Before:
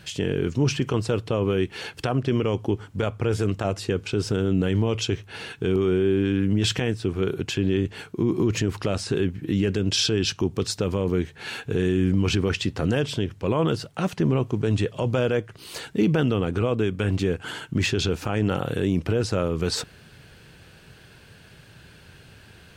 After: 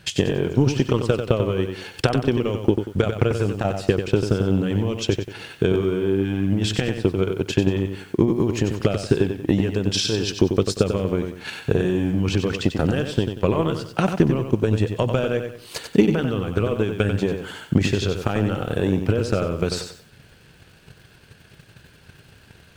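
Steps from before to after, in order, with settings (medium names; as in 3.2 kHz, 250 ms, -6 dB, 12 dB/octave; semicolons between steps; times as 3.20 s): transient shaper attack +12 dB, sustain -1 dB; bit-crushed delay 93 ms, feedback 35%, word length 8-bit, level -7 dB; trim -2.5 dB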